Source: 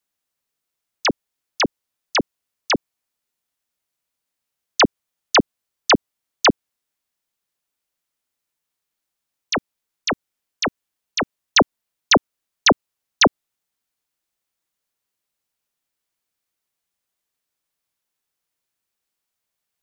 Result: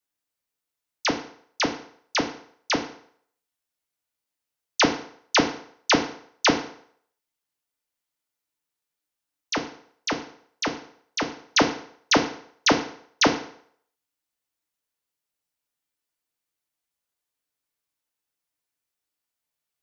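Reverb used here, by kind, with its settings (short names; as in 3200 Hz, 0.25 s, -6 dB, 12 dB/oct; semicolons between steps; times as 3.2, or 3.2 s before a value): FDN reverb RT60 0.61 s, low-frequency decay 0.8×, high-frequency decay 0.85×, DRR 3 dB; gain -6 dB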